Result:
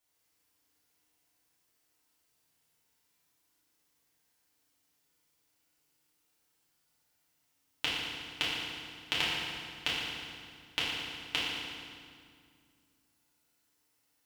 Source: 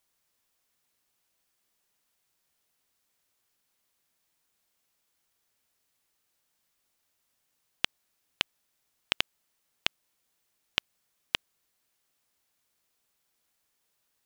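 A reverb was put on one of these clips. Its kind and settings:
feedback delay network reverb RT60 2.1 s, low-frequency decay 1.4×, high-frequency decay 0.85×, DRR −9 dB
level −8 dB

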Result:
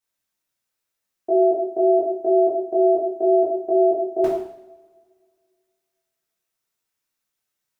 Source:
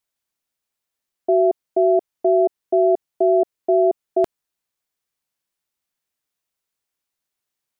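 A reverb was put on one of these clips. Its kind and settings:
coupled-rooms reverb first 0.68 s, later 2.2 s, from −24 dB, DRR −9 dB
level −7.5 dB

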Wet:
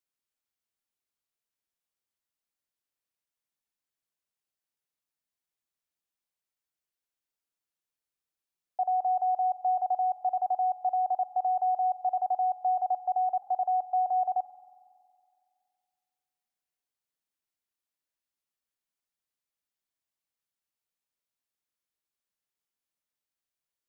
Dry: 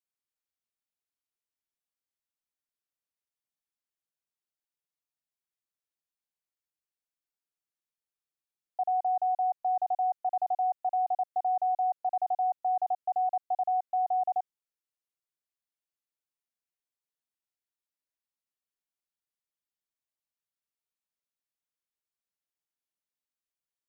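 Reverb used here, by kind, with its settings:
spring reverb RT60 2.3 s, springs 46 ms, chirp 25 ms, DRR 14.5 dB
level +1.5 dB

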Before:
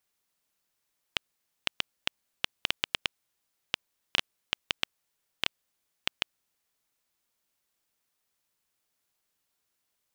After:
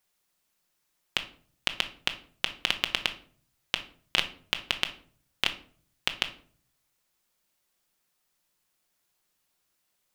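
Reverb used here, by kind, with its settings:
rectangular room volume 500 cubic metres, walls furnished, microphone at 0.95 metres
level +3 dB

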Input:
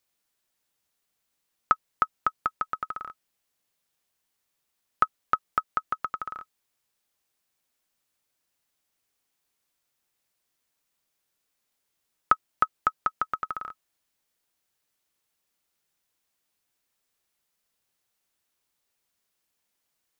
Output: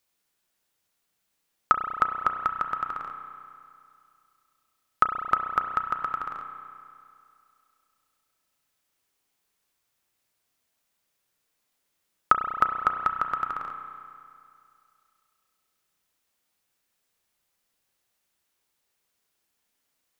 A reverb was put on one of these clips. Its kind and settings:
spring reverb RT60 2.4 s, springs 32 ms, chirp 70 ms, DRR 5 dB
level +1.5 dB

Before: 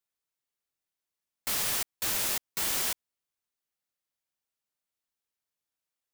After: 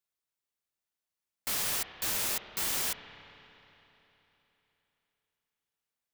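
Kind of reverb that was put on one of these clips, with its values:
spring reverb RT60 3.5 s, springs 30/51 ms, chirp 80 ms, DRR 9 dB
level −2 dB

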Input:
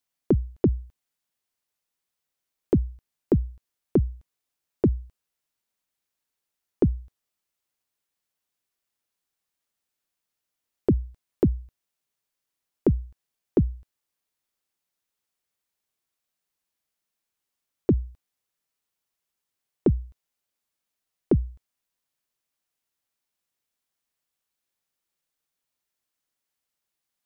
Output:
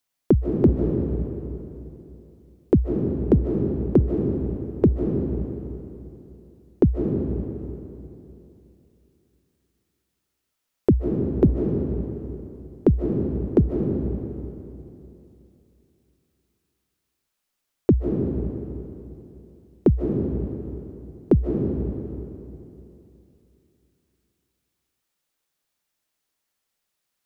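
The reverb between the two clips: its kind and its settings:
comb and all-pass reverb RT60 3 s, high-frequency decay 0.75×, pre-delay 110 ms, DRR 1.5 dB
level +3.5 dB

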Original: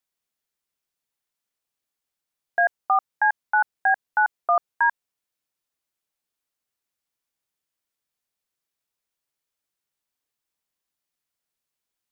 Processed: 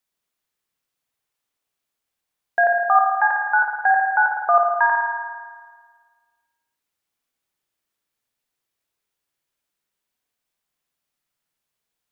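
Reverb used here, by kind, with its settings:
spring reverb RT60 1.6 s, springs 53 ms, chirp 25 ms, DRR 1 dB
level +2.5 dB

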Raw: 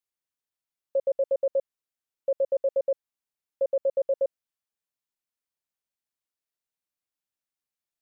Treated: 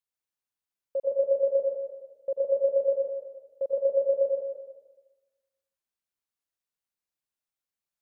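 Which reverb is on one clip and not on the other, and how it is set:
dense smooth reverb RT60 1.2 s, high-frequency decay 0.6×, pre-delay 80 ms, DRR 0 dB
level −4 dB

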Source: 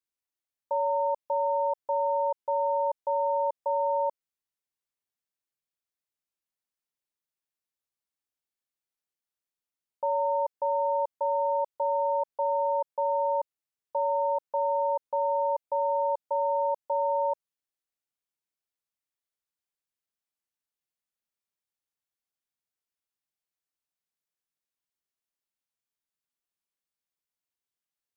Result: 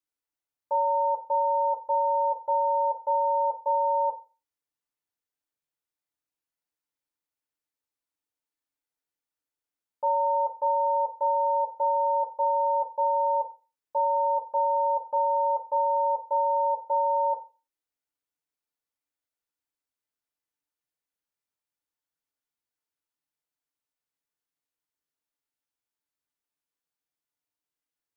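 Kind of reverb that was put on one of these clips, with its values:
feedback delay network reverb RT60 0.31 s, low-frequency decay 0.8×, high-frequency decay 0.25×, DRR 1 dB
level −2 dB

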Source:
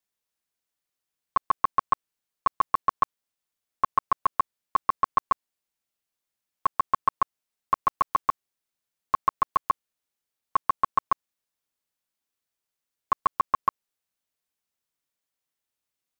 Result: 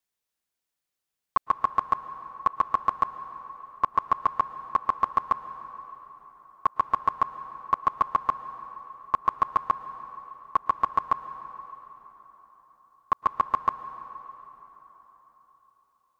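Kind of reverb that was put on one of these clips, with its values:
dense smooth reverb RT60 4.2 s, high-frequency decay 0.7×, pre-delay 100 ms, DRR 12.5 dB

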